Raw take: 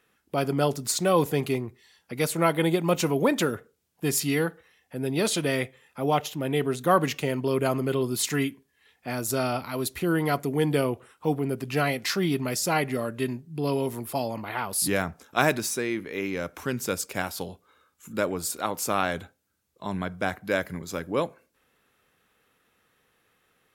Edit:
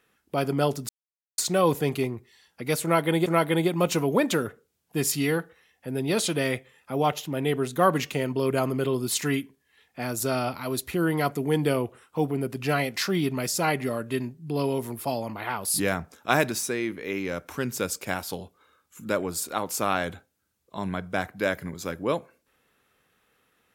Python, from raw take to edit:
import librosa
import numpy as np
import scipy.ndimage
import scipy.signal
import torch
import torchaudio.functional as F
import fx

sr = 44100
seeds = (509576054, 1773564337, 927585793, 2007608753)

y = fx.edit(x, sr, fx.insert_silence(at_s=0.89, length_s=0.49),
    fx.repeat(start_s=2.34, length_s=0.43, count=2), tone=tone)